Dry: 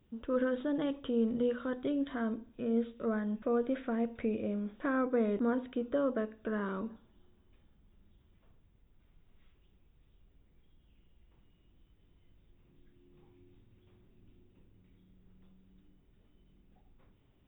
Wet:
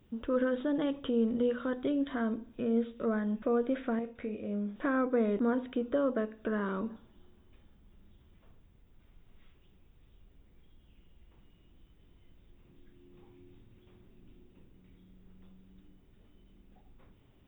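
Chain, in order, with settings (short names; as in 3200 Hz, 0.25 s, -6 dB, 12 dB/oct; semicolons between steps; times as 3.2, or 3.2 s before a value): notches 50/100/150 Hz; in parallel at -1.5 dB: compressor, threshold -40 dBFS, peak gain reduction 13.5 dB; 3.99–4.76 on the sum: resonator 51 Hz, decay 0.31 s, harmonics all, mix 80%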